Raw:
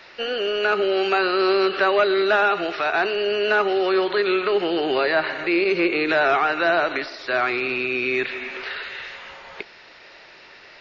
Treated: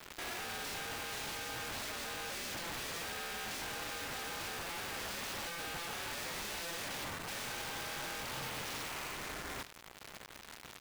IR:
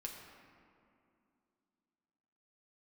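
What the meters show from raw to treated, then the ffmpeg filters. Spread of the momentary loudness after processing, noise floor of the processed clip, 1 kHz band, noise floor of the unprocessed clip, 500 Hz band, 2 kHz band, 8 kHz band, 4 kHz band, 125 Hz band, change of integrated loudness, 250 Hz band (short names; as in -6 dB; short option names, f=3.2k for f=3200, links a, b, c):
4 LU, -54 dBFS, -19.5 dB, -47 dBFS, -27.5 dB, -18.5 dB, n/a, -12.0 dB, -6.5 dB, -19.0 dB, -24.0 dB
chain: -af "lowpass=f=1.6k:w=0.5412,lowpass=f=1.6k:w=1.3066,lowshelf=f=110:g=-10,alimiter=limit=-19dB:level=0:latency=1,acompressor=threshold=-27dB:ratio=2.5,aeval=exprs='0.1*(cos(1*acos(clip(val(0)/0.1,-1,1)))-cos(1*PI/2))+0.00708*(cos(3*acos(clip(val(0)/0.1,-1,1)))-cos(3*PI/2))+0.00501*(cos(6*acos(clip(val(0)/0.1,-1,1)))-cos(6*PI/2))+0.000891*(cos(7*acos(clip(val(0)/0.1,-1,1)))-cos(7*PI/2))':c=same,aresample=8000,asoftclip=type=tanh:threshold=-37dB,aresample=44100,acrusher=bits=7:mix=0:aa=0.000001,aeval=exprs='val(0)*sin(2*PI*170*n/s)':c=same,aeval=exprs='(mod(133*val(0)+1,2)-1)/133':c=same,aecho=1:1:76:0.141,volume=6dB"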